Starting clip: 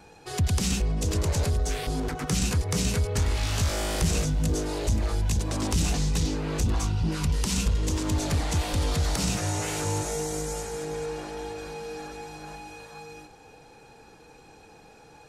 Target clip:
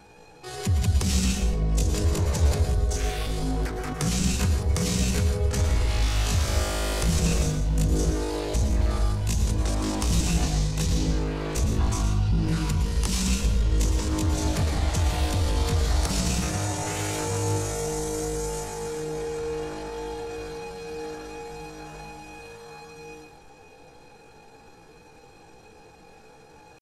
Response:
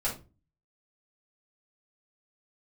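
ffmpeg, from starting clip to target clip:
-filter_complex "[0:a]atempo=0.57,asplit=2[link_01][link_02];[1:a]atrim=start_sample=2205,asetrate=35721,aresample=44100,adelay=107[link_03];[link_02][link_03]afir=irnorm=-1:irlink=0,volume=-13dB[link_04];[link_01][link_04]amix=inputs=2:normalize=0"

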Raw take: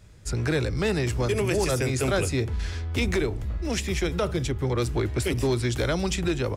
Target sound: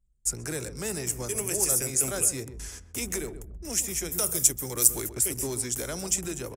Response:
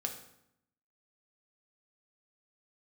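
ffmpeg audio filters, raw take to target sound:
-filter_complex "[0:a]asplit=3[link_01][link_02][link_03];[link_01]afade=type=out:start_time=4.11:duration=0.02[link_04];[link_02]aemphasis=mode=production:type=75kf,afade=type=in:start_time=4.11:duration=0.02,afade=type=out:start_time=5.08:duration=0.02[link_05];[link_03]afade=type=in:start_time=5.08:duration=0.02[link_06];[link_04][link_05][link_06]amix=inputs=3:normalize=0,aexciter=amount=9.3:drive=7.2:freq=6000,equalizer=frequency=83:width=2.1:gain=-13,anlmdn=3.98,asplit=2[link_07][link_08];[link_08]adelay=131,lowpass=frequency=940:poles=1,volume=-10dB,asplit=2[link_09][link_10];[link_10]adelay=131,lowpass=frequency=940:poles=1,volume=0.23,asplit=2[link_11][link_12];[link_12]adelay=131,lowpass=frequency=940:poles=1,volume=0.23[link_13];[link_09][link_11][link_13]amix=inputs=3:normalize=0[link_14];[link_07][link_14]amix=inputs=2:normalize=0,volume=-9dB"

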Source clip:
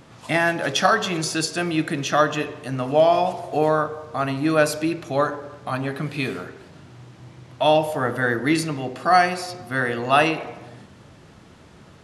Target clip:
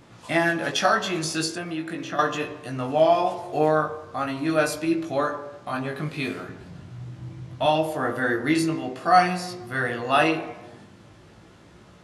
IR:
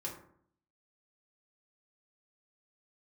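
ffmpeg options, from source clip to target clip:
-filter_complex "[0:a]asplit=2[link_01][link_02];[1:a]atrim=start_sample=2205[link_03];[link_02][link_03]afir=irnorm=-1:irlink=0,volume=-8dB[link_04];[link_01][link_04]amix=inputs=2:normalize=0,flanger=delay=17.5:depth=2.1:speed=0.42,asettb=1/sr,asplit=3[link_05][link_06][link_07];[link_05]atrim=end=1.554[link_08];[link_06]atrim=start=1.55:end=2.19,asetpts=PTS-STARTPTS,afade=type=in:duration=0.004:curve=qsin,afade=type=out:start_time=0.636:duration=0.004:curve=qsin,acrossover=split=350|2500[link_09][link_10][link_11];[link_09]acompressor=threshold=-33dB:ratio=4[link_12];[link_10]acompressor=threshold=-31dB:ratio=4[link_13];[link_11]acompressor=threshold=-45dB:ratio=4[link_14];[link_12][link_13][link_14]amix=inputs=3:normalize=0[link_15];[link_07]atrim=start=2.186[link_16];[link_08][link_15]acrossfade=duration=0.004:curve1=hsin:curve2=qsin[link_17];[link_17][link_16]acrossfade=duration=0.004:curve1=qsin:curve2=hsin,asettb=1/sr,asplit=3[link_18][link_19][link_20];[link_18]atrim=end=6.494[link_21];[link_19]atrim=start=6.49:end=7.66,asetpts=PTS-STARTPTS,afade=type=in:duration=0.004:curve=qsin,afade=type=out:start_time=1.166:duration=0.004:curve=qsin,bass=frequency=250:gain=10,treble=frequency=4000:gain=0[link_22];[link_20]atrim=start=7.656[link_23];[link_21][link_22]acrossfade=duration=0.004:curve1=hsin:curve2=qsin[link_24];[link_24][link_23]acrossfade=duration=0.004:curve1=qsin:curve2=hsin,volume=-1.5dB"

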